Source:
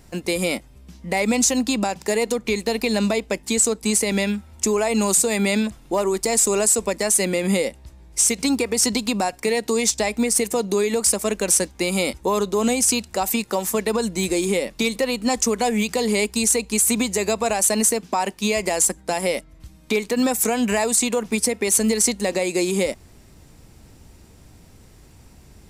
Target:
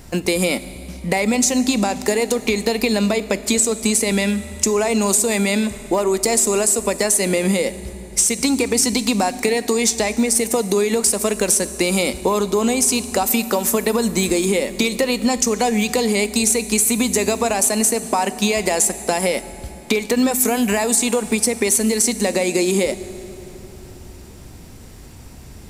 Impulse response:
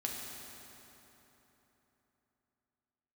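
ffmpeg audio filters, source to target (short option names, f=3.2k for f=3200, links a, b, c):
-filter_complex "[0:a]acompressor=threshold=-23dB:ratio=6,asplit=2[a][b];[1:a]atrim=start_sample=2205,highshelf=f=8k:g=8.5[c];[b][c]afir=irnorm=-1:irlink=0,volume=-12.5dB[d];[a][d]amix=inputs=2:normalize=0,volume=6.5dB"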